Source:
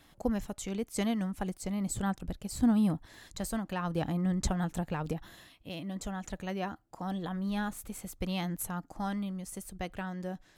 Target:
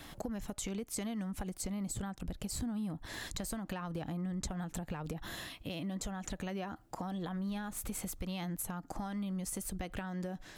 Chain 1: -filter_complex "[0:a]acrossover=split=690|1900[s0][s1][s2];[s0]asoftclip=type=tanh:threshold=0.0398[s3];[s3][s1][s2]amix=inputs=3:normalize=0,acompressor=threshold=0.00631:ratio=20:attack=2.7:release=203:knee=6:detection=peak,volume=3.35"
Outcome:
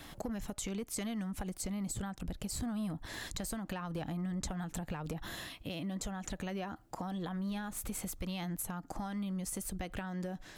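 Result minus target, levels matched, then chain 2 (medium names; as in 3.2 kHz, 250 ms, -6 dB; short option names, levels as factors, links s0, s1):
saturation: distortion +16 dB
-filter_complex "[0:a]acrossover=split=690|1900[s0][s1][s2];[s0]asoftclip=type=tanh:threshold=0.15[s3];[s3][s1][s2]amix=inputs=3:normalize=0,acompressor=threshold=0.00631:ratio=20:attack=2.7:release=203:knee=6:detection=peak,volume=3.35"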